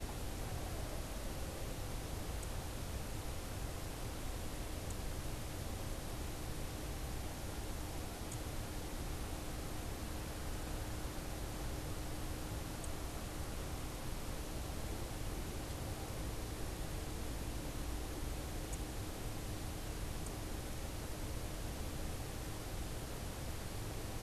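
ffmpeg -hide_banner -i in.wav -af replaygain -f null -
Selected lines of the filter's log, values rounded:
track_gain = +31.1 dB
track_peak = 0.025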